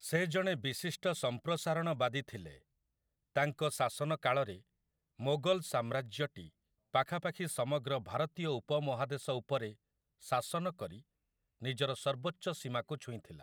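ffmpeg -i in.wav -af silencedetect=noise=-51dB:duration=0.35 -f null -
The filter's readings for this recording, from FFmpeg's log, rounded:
silence_start: 2.57
silence_end: 3.36 | silence_duration: 0.79
silence_start: 4.59
silence_end: 5.19 | silence_duration: 0.60
silence_start: 6.48
silence_end: 6.94 | silence_duration: 0.45
silence_start: 9.74
silence_end: 10.22 | silence_duration: 0.49
silence_start: 11.00
silence_end: 11.62 | silence_duration: 0.62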